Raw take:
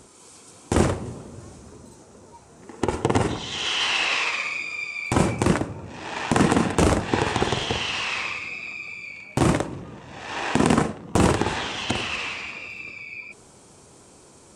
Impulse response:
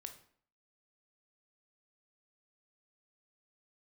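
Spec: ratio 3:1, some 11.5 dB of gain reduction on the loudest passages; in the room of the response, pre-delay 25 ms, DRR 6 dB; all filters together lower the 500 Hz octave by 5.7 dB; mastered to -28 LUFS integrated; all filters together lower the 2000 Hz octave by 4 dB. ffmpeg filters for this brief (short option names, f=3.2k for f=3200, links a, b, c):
-filter_complex "[0:a]equalizer=f=500:t=o:g=-7.5,equalizer=f=2k:t=o:g=-5,acompressor=threshold=-32dB:ratio=3,asplit=2[a][b];[1:a]atrim=start_sample=2205,adelay=25[c];[b][c]afir=irnorm=-1:irlink=0,volume=-1dB[d];[a][d]amix=inputs=2:normalize=0,volume=5.5dB"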